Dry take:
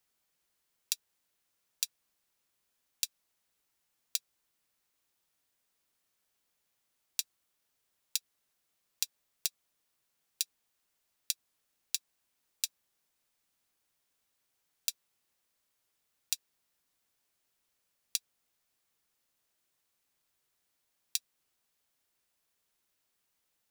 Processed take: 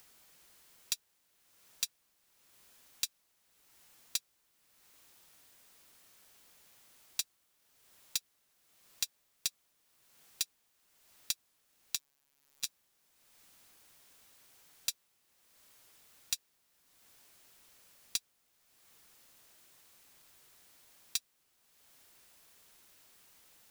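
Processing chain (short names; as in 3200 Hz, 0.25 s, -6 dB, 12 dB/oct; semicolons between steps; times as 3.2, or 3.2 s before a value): in parallel at -2 dB: upward compressor, threshold -46 dBFS; on the sum: soft clip -21.5 dBFS, distortion -3 dB; 11.95–12.65 robotiser 140 Hz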